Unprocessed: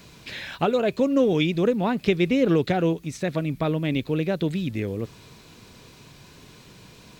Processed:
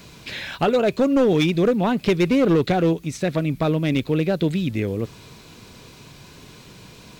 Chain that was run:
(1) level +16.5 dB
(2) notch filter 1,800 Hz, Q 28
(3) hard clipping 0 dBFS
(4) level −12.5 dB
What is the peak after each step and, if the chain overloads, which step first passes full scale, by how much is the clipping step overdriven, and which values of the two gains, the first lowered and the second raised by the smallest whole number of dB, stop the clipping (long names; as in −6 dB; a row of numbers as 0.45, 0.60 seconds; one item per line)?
+9.5, +9.5, 0.0, −12.5 dBFS
step 1, 9.5 dB
step 1 +6.5 dB, step 4 −2.5 dB